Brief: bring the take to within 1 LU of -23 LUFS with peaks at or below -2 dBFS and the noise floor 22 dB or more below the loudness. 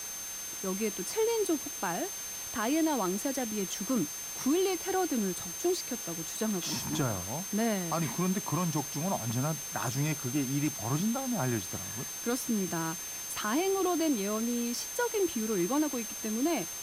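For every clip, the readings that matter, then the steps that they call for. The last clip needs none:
steady tone 6.3 kHz; tone level -39 dBFS; noise floor -40 dBFS; noise floor target -54 dBFS; loudness -31.5 LUFS; peak level -17.5 dBFS; loudness target -23.0 LUFS
-> band-stop 6.3 kHz, Q 30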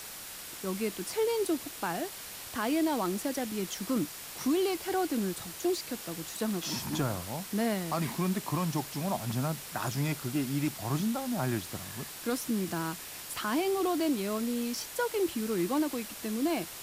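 steady tone not found; noise floor -44 dBFS; noise floor target -55 dBFS
-> noise reduction 11 dB, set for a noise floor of -44 dBFS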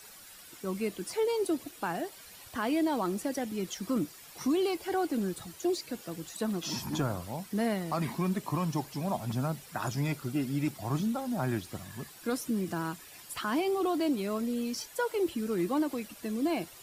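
noise floor -51 dBFS; noise floor target -55 dBFS
-> noise reduction 6 dB, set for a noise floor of -51 dBFS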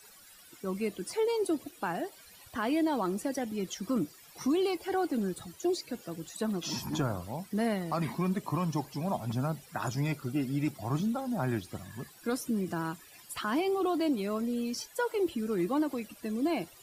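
noise floor -55 dBFS; loudness -33.0 LUFS; peak level -20.0 dBFS; loudness target -23.0 LUFS
-> trim +10 dB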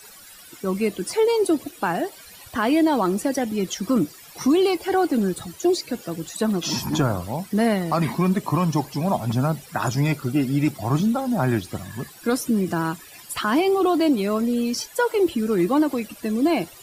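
loudness -23.0 LUFS; peak level -10.0 dBFS; noise floor -45 dBFS

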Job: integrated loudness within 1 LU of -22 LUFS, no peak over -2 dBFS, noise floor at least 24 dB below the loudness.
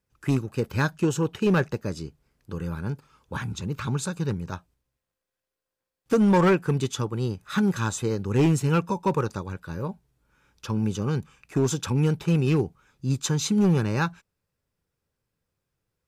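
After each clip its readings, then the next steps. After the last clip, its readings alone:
clipped samples 1.0%; clipping level -15.0 dBFS; loudness -25.5 LUFS; peak level -15.0 dBFS; loudness target -22.0 LUFS
-> clip repair -15 dBFS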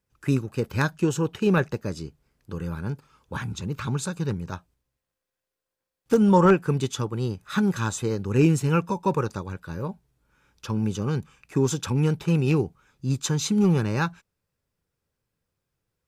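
clipped samples 0.0%; loudness -25.0 LUFS; peak level -6.5 dBFS; loudness target -22.0 LUFS
-> trim +3 dB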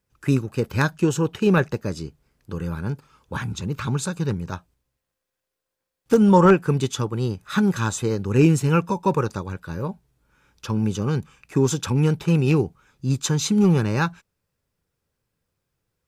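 loudness -22.0 LUFS; peak level -3.5 dBFS; noise floor -83 dBFS

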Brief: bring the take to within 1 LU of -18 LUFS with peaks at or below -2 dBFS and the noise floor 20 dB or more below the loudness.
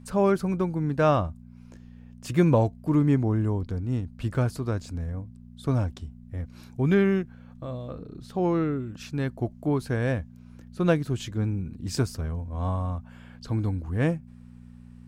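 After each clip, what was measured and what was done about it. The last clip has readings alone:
hum 60 Hz; highest harmonic 240 Hz; hum level -47 dBFS; loudness -27.0 LUFS; peak level -7.5 dBFS; loudness target -18.0 LUFS
-> de-hum 60 Hz, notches 4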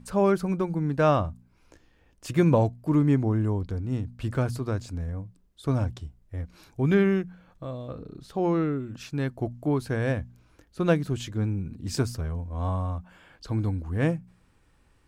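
hum not found; loudness -27.5 LUFS; peak level -8.0 dBFS; loudness target -18.0 LUFS
-> trim +9.5 dB; peak limiter -2 dBFS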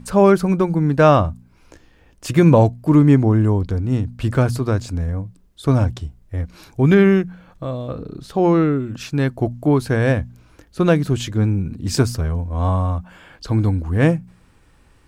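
loudness -18.0 LUFS; peak level -2.0 dBFS; noise floor -53 dBFS

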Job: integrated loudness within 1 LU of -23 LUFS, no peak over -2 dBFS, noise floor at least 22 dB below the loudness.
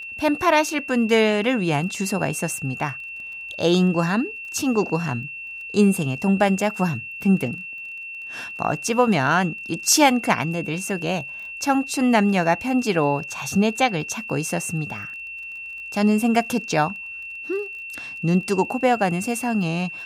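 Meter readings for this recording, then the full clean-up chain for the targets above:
tick rate 22 per s; steady tone 2.7 kHz; tone level -32 dBFS; loudness -22.0 LUFS; peak level -3.0 dBFS; loudness target -23.0 LUFS
-> de-click; band-stop 2.7 kHz, Q 30; trim -1 dB

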